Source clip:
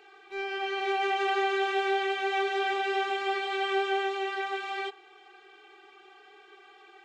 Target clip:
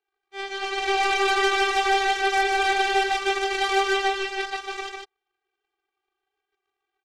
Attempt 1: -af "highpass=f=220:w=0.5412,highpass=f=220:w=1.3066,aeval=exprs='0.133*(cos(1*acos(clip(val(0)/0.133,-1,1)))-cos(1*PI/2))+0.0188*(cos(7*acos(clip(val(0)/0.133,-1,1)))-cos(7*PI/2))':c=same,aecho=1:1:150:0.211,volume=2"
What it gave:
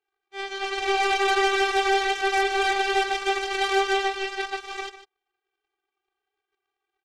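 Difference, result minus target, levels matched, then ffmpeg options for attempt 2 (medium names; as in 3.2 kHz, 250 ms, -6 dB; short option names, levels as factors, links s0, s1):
echo-to-direct -9.5 dB
-af "highpass=f=220:w=0.5412,highpass=f=220:w=1.3066,aeval=exprs='0.133*(cos(1*acos(clip(val(0)/0.133,-1,1)))-cos(1*PI/2))+0.0188*(cos(7*acos(clip(val(0)/0.133,-1,1)))-cos(7*PI/2))':c=same,aecho=1:1:150:0.631,volume=2"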